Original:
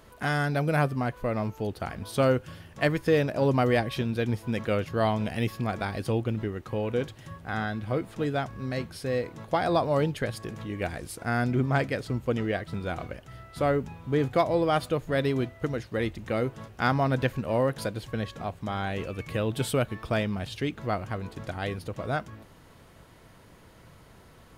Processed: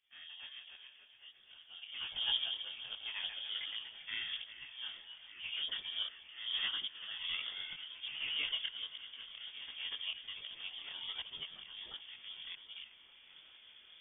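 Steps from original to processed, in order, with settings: one-sided fold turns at -18 dBFS; Doppler pass-by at 6.64, 17 m/s, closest 3 m; recorder AGC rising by 5.2 dB/s; high shelf 2500 Hz -6 dB; granular stretch 0.57×, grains 88 ms; auto swell 0.615 s; thinning echo 0.392 s, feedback 80%, high-pass 430 Hz, level -15 dB; echoes that change speed 0.317 s, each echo +1 st, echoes 2, each echo -6 dB; inverted band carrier 3400 Hz; detuned doubles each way 46 cents; gain +8 dB

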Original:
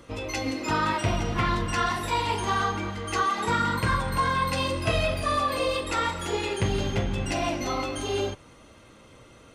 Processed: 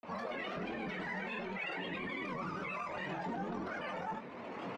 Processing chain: recorder AGC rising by 8 dB/s; Chebyshev band-pass 110–1200 Hz, order 2; tilt shelf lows +4.5 dB, about 850 Hz; limiter -34.5 dBFS, peak gain reduction 23 dB; grains, pitch spread up and down by 3 st; flange 0.68 Hz, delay 5.3 ms, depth 9.8 ms, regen -39%; doubler 43 ms -7 dB; speed mistake 7.5 ips tape played at 15 ips; gain +5 dB

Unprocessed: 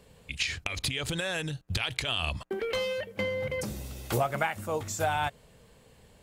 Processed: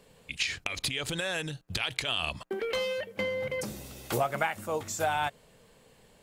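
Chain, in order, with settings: bell 68 Hz -10 dB 1.7 oct

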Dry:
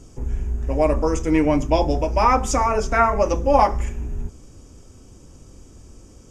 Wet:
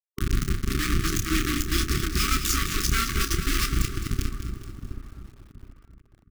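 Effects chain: reverb removal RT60 0.53 s; graphic EQ 125/250/500/1000/2000/4000/8000 Hz -11/-6/-5/-8/-6/+8/-3 dB; in parallel at 0 dB: compressor 6:1, threshold -38 dBFS, peak gain reduction 19 dB; on the sum: rotary speaker horn 8 Hz, later 0.9 Hz, at 3.31; bit-crush 4-bit; brick-wall FIR band-stop 410–1100 Hz; doubler 30 ms -9 dB; on a send: dark delay 0.721 s, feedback 34%, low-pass 900 Hz, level -9 dB; on the sum: lo-fi delay 0.212 s, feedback 55%, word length 8-bit, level -9.5 dB

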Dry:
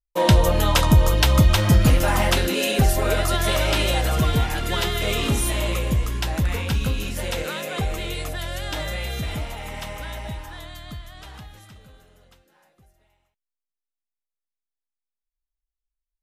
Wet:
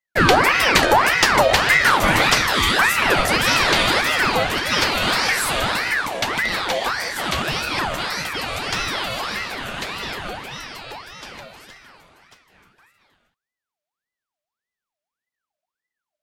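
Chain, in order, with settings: overdrive pedal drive 10 dB, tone 4100 Hz, clips at -5 dBFS; ring modulator with a swept carrier 1300 Hz, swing 55%, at 1.7 Hz; gain +5.5 dB

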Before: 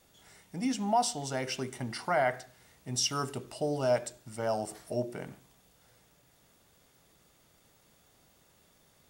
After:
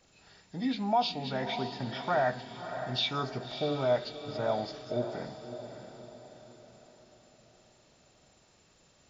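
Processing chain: nonlinear frequency compression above 1500 Hz 1.5:1; diffused feedback echo 0.6 s, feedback 47%, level -9.5 dB

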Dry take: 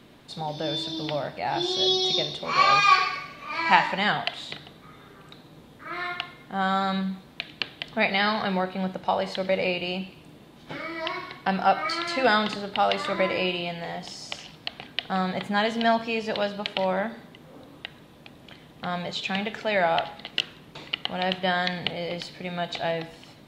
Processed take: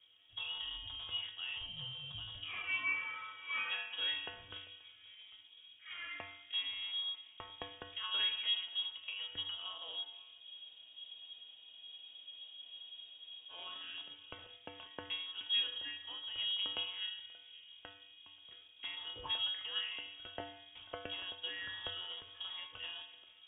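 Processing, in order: rattling part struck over -37 dBFS, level -26 dBFS; HPF 140 Hz 24 dB/oct; tilt -3 dB/oct; compressor 12:1, threshold -29 dBFS, peak gain reduction 17.5 dB; resonator 200 Hz, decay 0.69 s, harmonics all, mix 90%; darkening echo 0.532 s, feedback 59%, low-pass 2400 Hz, level -19 dB; inverted band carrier 3500 Hz; spectral freeze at 10.43, 3.08 s; three-band expander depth 40%; gain +5 dB

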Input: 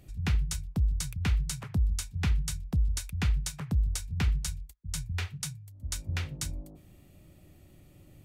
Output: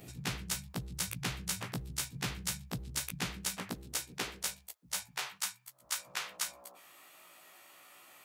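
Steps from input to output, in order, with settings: short-time reversal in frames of 35 ms; high-pass sweep 140 Hz -> 1100 Hz, 2.98–5.5; spectral compressor 2:1

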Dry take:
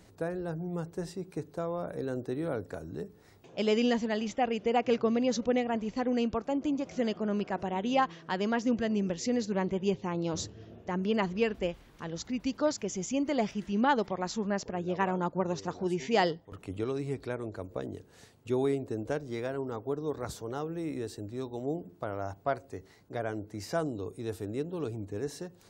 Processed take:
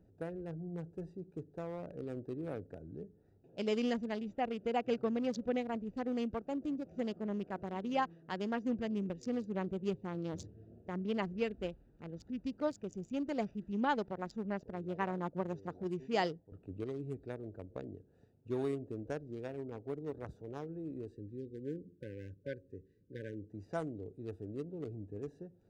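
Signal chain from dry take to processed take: Wiener smoothing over 41 samples; spectral delete 21.13–23.5, 580–1500 Hz; gain -6 dB

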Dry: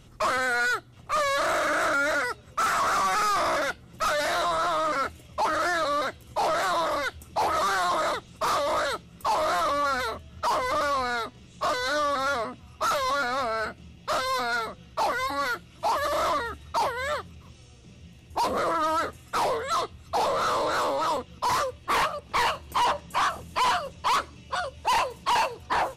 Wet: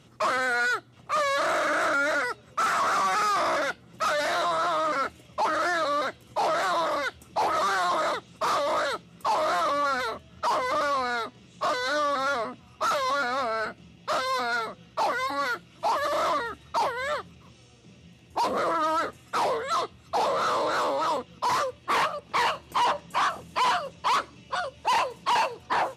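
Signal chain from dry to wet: HPF 130 Hz 12 dB/oct; high shelf 10000 Hz -9 dB

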